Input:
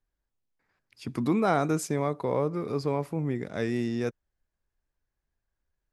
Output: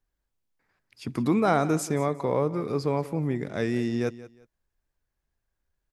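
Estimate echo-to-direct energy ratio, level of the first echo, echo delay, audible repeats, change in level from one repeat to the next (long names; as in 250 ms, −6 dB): −16.5 dB, −17.0 dB, 179 ms, 2, −11.5 dB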